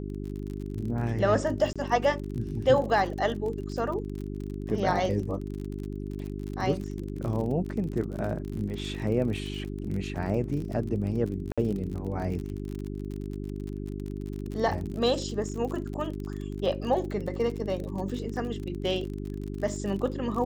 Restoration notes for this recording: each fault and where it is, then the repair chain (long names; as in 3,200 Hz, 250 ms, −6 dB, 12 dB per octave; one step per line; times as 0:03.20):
surface crackle 42 per second −34 dBFS
mains hum 50 Hz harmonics 8 −35 dBFS
0:01.73–0:01.76: drop-out 26 ms
0:11.52–0:11.58: drop-out 56 ms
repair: click removal
hum removal 50 Hz, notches 8
repair the gap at 0:01.73, 26 ms
repair the gap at 0:11.52, 56 ms